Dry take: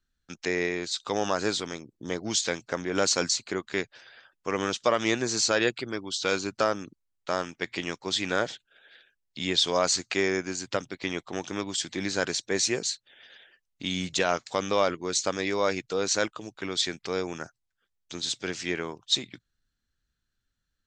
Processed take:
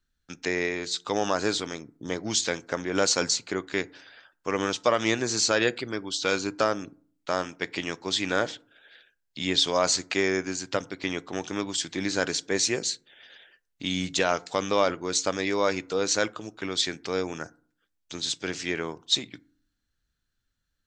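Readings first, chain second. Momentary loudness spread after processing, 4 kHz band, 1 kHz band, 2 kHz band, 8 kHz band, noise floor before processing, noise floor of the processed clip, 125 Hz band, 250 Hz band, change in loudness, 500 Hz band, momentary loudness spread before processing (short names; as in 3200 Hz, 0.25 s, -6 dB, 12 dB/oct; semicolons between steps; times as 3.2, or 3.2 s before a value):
11 LU, +1.0 dB, +1.0 dB, +1.0 dB, +1.0 dB, -81 dBFS, -78 dBFS, +1.0 dB, +1.5 dB, +1.0 dB, +1.0 dB, 11 LU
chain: FDN reverb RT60 0.47 s, low-frequency decay 1.35×, high-frequency decay 0.45×, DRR 17.5 dB; gain +1 dB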